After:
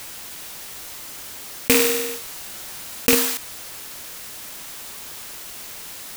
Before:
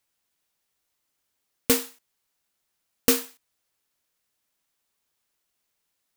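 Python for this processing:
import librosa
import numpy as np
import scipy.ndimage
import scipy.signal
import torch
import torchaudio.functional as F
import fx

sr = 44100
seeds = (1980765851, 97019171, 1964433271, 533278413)

y = fx.rattle_buzz(x, sr, strikes_db=-34.0, level_db=-10.0)
y = fx.room_flutter(y, sr, wall_m=8.4, rt60_s=0.44, at=(1.7, 3.15))
y = fx.env_flatten(y, sr, amount_pct=70)
y = y * 10.0 ** (1.5 / 20.0)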